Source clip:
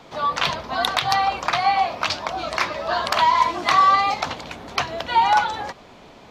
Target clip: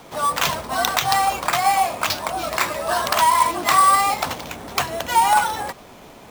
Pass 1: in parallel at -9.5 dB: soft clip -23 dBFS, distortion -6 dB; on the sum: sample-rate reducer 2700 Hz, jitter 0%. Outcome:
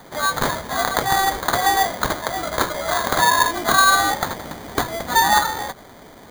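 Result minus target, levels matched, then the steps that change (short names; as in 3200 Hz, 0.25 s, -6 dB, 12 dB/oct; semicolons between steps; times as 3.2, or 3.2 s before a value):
sample-rate reducer: distortion +15 dB
change: sample-rate reducer 9500 Hz, jitter 0%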